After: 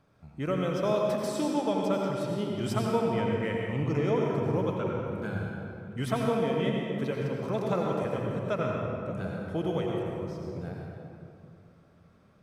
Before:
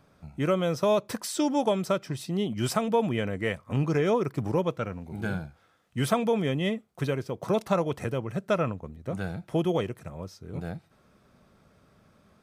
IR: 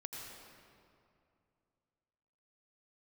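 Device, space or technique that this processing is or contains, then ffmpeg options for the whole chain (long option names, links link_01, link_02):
swimming-pool hall: -filter_complex "[1:a]atrim=start_sample=2205[link_01];[0:a][link_01]afir=irnorm=-1:irlink=0,highshelf=frequency=5900:gain=-6.5,asettb=1/sr,asplit=3[link_02][link_03][link_04];[link_02]atrim=end=3.714[link_05];[link_03]atrim=start=3.71:end=4.29,asetpts=PTS-STARTPTS,afade=type=in:duration=0.004:curve=qsin,afade=type=out:start_time=0.576:duration=0.004:curve=qsin,bandreject=frequency=1600:width=7.4[link_06];[link_04]atrim=start=4.286[link_07];[link_05][link_06]acrossfade=duration=0.004:curve1=hsin:curve2=qsin[link_08];[link_08][link_07]acrossfade=duration=0.004:curve1=qsin:curve2=hsin"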